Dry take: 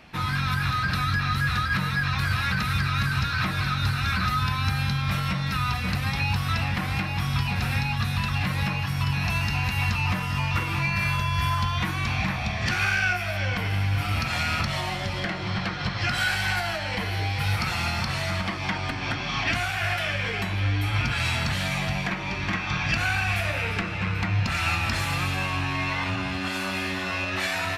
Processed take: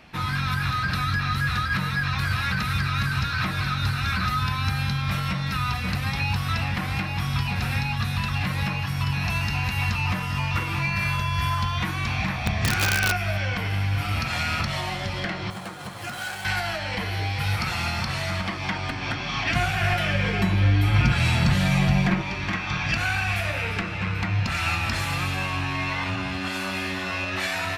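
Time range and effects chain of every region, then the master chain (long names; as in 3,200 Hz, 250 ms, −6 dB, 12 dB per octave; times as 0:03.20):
0:12.46–0:13.38: low-shelf EQ 390 Hz +6 dB + mains-hum notches 60/120/180/240/300/360/420/480/540/600 Hz + wrap-around overflow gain 14 dB
0:15.50–0:16.45: running median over 9 samples + high-pass filter 380 Hz 6 dB per octave + parametric band 2,000 Hz −8.5 dB 1.5 octaves
0:19.55–0:22.22: low-shelf EQ 450 Hz +9.5 dB + comb filter 5.6 ms, depth 35%
whole clip: no processing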